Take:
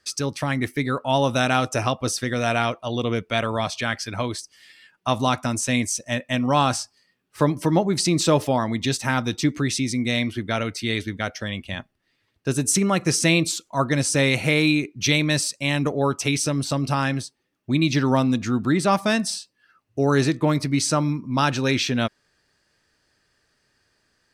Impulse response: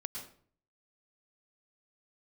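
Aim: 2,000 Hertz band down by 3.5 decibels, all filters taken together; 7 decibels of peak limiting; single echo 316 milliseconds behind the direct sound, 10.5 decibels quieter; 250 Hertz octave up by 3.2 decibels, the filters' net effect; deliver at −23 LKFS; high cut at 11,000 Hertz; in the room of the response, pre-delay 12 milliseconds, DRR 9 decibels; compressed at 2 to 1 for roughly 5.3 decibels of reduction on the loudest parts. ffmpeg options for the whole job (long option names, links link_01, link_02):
-filter_complex "[0:a]lowpass=11000,equalizer=frequency=250:width_type=o:gain=4,equalizer=frequency=2000:width_type=o:gain=-4.5,acompressor=threshold=-23dB:ratio=2,alimiter=limit=-15.5dB:level=0:latency=1,aecho=1:1:316:0.299,asplit=2[link_01][link_02];[1:a]atrim=start_sample=2205,adelay=12[link_03];[link_02][link_03]afir=irnorm=-1:irlink=0,volume=-8.5dB[link_04];[link_01][link_04]amix=inputs=2:normalize=0,volume=2.5dB"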